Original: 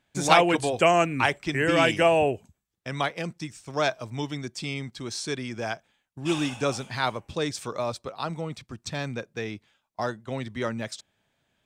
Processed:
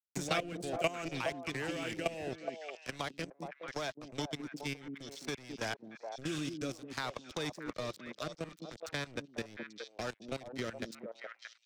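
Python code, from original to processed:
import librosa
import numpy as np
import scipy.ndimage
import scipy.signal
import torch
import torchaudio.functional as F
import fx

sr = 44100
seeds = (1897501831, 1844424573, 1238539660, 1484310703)

p1 = np.sign(x) * np.maximum(np.abs(x) - 10.0 ** (-33.5 / 20.0), 0.0)
p2 = fx.peak_eq(p1, sr, hz=5900.0, db=4.5, octaves=1.2)
p3 = fx.level_steps(p2, sr, step_db=18)
p4 = fx.rotary_switch(p3, sr, hz=0.65, then_hz=5.5, switch_at_s=9.46)
p5 = p4 + fx.echo_stepped(p4, sr, ms=209, hz=250.0, octaves=1.4, feedback_pct=70, wet_db=-4.0, dry=0)
p6 = fx.band_squash(p5, sr, depth_pct=70)
y = F.gain(torch.from_numpy(p6), 1.0).numpy()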